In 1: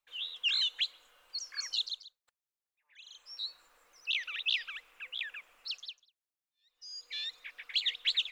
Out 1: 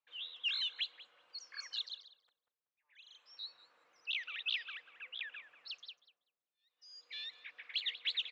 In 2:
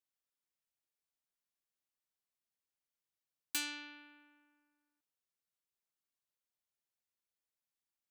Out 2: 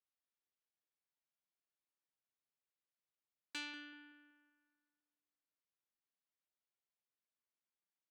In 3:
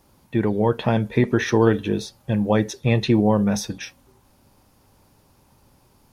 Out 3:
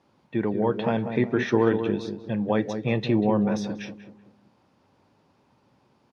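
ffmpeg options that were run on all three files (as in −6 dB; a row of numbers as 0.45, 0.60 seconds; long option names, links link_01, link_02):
-filter_complex "[0:a]highpass=140,lowpass=3800,asplit=2[link_01][link_02];[link_02]adelay=190,lowpass=frequency=970:poles=1,volume=-7dB,asplit=2[link_03][link_04];[link_04]adelay=190,lowpass=frequency=970:poles=1,volume=0.42,asplit=2[link_05][link_06];[link_06]adelay=190,lowpass=frequency=970:poles=1,volume=0.42,asplit=2[link_07][link_08];[link_08]adelay=190,lowpass=frequency=970:poles=1,volume=0.42,asplit=2[link_09][link_10];[link_10]adelay=190,lowpass=frequency=970:poles=1,volume=0.42[link_11];[link_03][link_05][link_07][link_09][link_11]amix=inputs=5:normalize=0[link_12];[link_01][link_12]amix=inputs=2:normalize=0,volume=-4dB"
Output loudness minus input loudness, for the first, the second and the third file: −6.0, −8.0, −4.0 LU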